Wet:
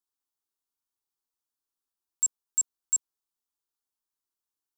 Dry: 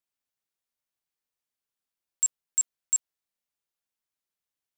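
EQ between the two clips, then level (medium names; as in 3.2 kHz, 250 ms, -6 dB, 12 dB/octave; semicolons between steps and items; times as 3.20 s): static phaser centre 580 Hz, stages 6; 0.0 dB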